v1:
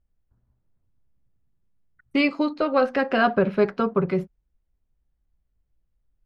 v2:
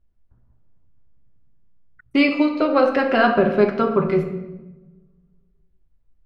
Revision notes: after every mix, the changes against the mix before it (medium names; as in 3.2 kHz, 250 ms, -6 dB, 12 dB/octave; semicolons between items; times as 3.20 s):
first voice +8.0 dB; reverb: on, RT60 1.1 s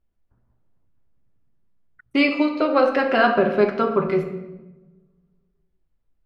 master: add bass shelf 160 Hz -9.5 dB